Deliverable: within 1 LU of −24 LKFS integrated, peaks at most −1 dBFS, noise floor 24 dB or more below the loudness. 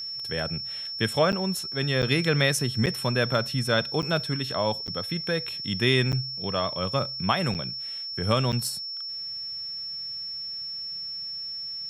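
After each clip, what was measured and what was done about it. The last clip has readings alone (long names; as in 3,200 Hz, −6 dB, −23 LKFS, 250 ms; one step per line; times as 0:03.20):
number of dropouts 8; longest dropout 8.4 ms; interfering tone 5,400 Hz; level of the tone −32 dBFS; integrated loudness −27.0 LKFS; sample peak −8.0 dBFS; target loudness −24.0 LKFS
→ repair the gap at 0:01.32/0:02.02/0:02.86/0:04.02/0:04.87/0:06.12/0:07.54/0:08.52, 8.4 ms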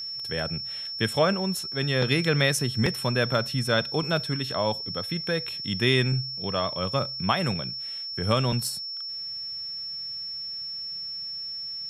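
number of dropouts 0; interfering tone 5,400 Hz; level of the tone −32 dBFS
→ notch filter 5,400 Hz, Q 30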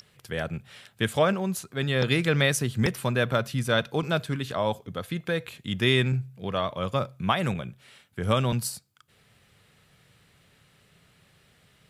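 interfering tone none found; integrated loudness −27.0 LKFS; sample peak −9.0 dBFS; target loudness −24.0 LKFS
→ level +3 dB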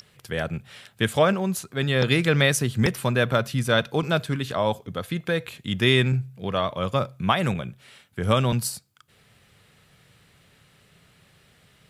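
integrated loudness −24.0 LKFS; sample peak −6.0 dBFS; background noise floor −59 dBFS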